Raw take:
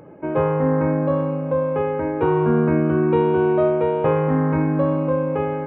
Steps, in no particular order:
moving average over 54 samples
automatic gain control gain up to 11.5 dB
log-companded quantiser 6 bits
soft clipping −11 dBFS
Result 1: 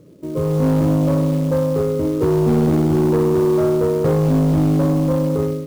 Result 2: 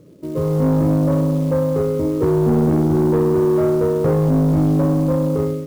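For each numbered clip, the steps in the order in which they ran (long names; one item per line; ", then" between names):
moving average, then automatic gain control, then soft clipping, then log-companded quantiser
moving average, then automatic gain control, then log-companded quantiser, then soft clipping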